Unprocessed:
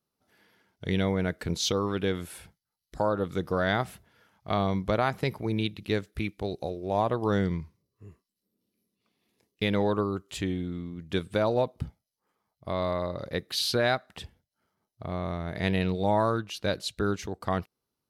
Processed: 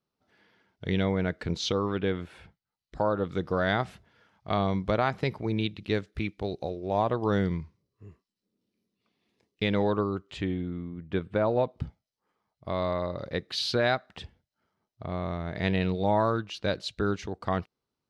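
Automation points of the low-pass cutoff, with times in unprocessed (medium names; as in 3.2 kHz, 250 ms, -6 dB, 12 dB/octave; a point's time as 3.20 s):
1.54 s 4.7 kHz
2.21 s 2.8 kHz
3.68 s 5.5 kHz
9.90 s 5.5 kHz
10.87 s 2.1 kHz
11.42 s 2.1 kHz
11.83 s 5.2 kHz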